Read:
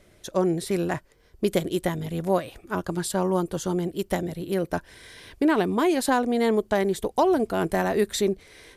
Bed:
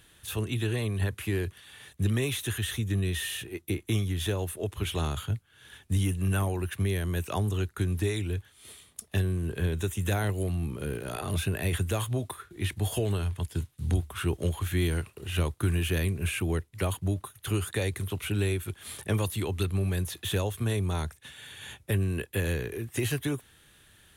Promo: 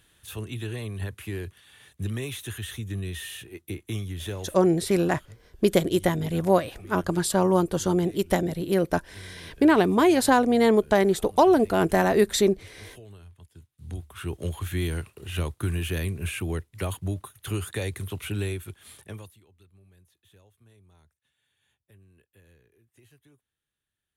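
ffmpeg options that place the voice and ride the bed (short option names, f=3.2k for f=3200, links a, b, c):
-filter_complex "[0:a]adelay=4200,volume=3dB[a];[1:a]volume=13.5dB,afade=t=out:st=4.36:d=0.33:silence=0.188365,afade=t=in:st=13.67:d=0.93:silence=0.133352,afade=t=out:st=18.34:d=1.06:silence=0.0375837[b];[a][b]amix=inputs=2:normalize=0"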